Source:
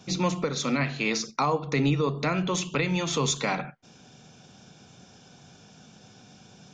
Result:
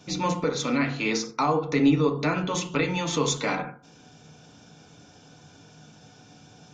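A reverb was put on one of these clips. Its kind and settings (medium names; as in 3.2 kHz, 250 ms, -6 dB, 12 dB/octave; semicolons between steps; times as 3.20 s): FDN reverb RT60 0.45 s, low-frequency decay 0.9×, high-frequency decay 0.3×, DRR 2.5 dB; trim -1 dB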